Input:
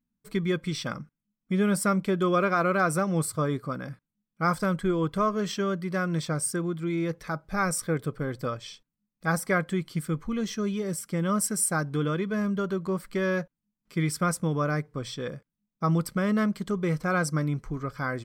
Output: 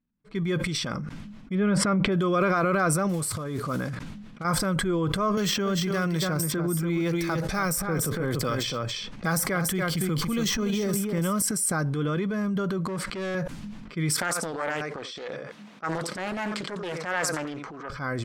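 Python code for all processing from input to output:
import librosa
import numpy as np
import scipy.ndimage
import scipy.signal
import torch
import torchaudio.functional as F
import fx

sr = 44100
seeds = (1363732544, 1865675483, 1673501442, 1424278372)

y = fx.chain(x, sr, fx.lowpass(hz=2800.0, slope=12),
    fx.env_flatten(amount_pct=50), at=(1.55, 2.12))
y = fx.chain(y, sr, fx.block_float(bits=5),
    fx.over_compress(threshold_db=-29.0, ratio=-0.5), at=(3.09, 4.45))
y = fx.chain(y, sr, fx.echo_single(ms=285, db=-7.5),
    fx.resample_bad(factor=2, down='none', up='hold'),
    fx.band_squash(depth_pct=100), at=(5.37, 11.42))
y = fx.chain(y, sr, fx.highpass(hz=140.0, slope=6),
    fx.clip_hard(threshold_db=-28.0), at=(12.87, 13.35))
y = fx.chain(y, sr, fx.highpass(hz=400.0, slope=12),
    fx.echo_single(ms=86, db=-15.5),
    fx.doppler_dist(depth_ms=0.58), at=(14.16, 17.9))
y = fx.env_lowpass(y, sr, base_hz=2800.0, full_db=-26.0)
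y = fx.transient(y, sr, attack_db=-4, sustain_db=9)
y = fx.sustainer(y, sr, db_per_s=31.0)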